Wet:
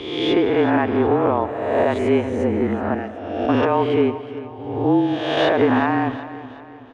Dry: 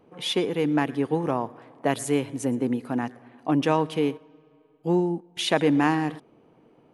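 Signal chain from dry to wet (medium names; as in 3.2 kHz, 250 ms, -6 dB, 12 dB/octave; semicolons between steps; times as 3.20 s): reverse spectral sustain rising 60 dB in 1.10 s; low-pass 1.9 kHz 12 dB/octave; peaking EQ 200 Hz -15 dB 0.54 oct; peak limiter -15.5 dBFS, peak gain reduction 8.5 dB; 2.94–3.49 s: static phaser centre 450 Hz, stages 4; frequency shift -30 Hz; feedback delay 371 ms, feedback 44%, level -15 dB; on a send at -16 dB: reverberation RT60 0.50 s, pre-delay 120 ms; on the sum: trim +7.5 dB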